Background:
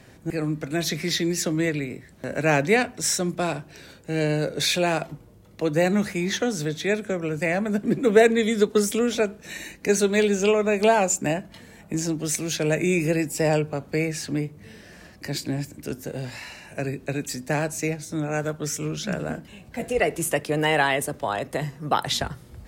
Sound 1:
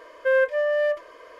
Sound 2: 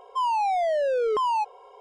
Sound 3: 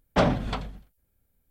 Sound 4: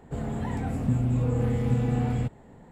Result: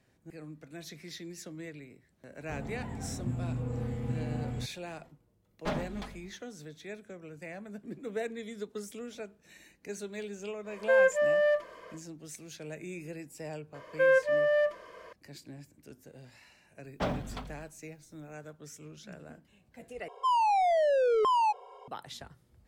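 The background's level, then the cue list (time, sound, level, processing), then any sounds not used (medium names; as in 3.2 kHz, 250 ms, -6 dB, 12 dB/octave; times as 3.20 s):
background -19.5 dB
2.38 s: add 4 -9.5 dB
5.49 s: add 3 -11 dB + comb filter that takes the minimum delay 4.8 ms
10.63 s: add 1 -3 dB, fades 0.10 s
13.74 s: add 1 -3.5 dB
16.84 s: add 3 -11 dB + companding laws mixed up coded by mu
20.08 s: replace with 2 -1.5 dB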